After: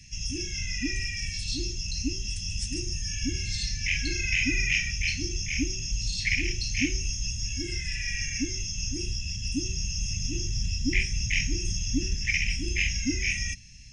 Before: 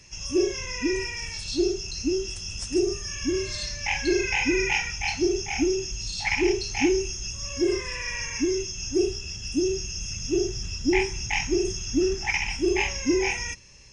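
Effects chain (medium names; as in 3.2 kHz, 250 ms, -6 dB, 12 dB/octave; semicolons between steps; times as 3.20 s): inverse Chebyshev band-stop 410–1200 Hz, stop band 40 dB; bass shelf 210 Hz +6 dB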